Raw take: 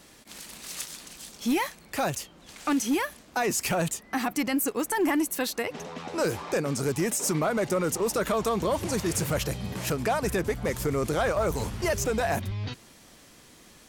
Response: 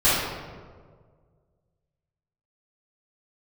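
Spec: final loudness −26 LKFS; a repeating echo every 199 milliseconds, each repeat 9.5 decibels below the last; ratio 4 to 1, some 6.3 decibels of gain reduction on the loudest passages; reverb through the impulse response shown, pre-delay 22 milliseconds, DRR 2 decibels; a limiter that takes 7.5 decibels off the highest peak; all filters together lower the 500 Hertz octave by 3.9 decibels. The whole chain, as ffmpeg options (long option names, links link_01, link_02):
-filter_complex "[0:a]equalizer=frequency=500:width_type=o:gain=-5,acompressor=threshold=-31dB:ratio=4,alimiter=level_in=3.5dB:limit=-24dB:level=0:latency=1,volume=-3.5dB,aecho=1:1:199|398|597|796:0.335|0.111|0.0365|0.012,asplit=2[link_01][link_02];[1:a]atrim=start_sample=2205,adelay=22[link_03];[link_02][link_03]afir=irnorm=-1:irlink=0,volume=-21dB[link_04];[link_01][link_04]amix=inputs=2:normalize=0,volume=7.5dB"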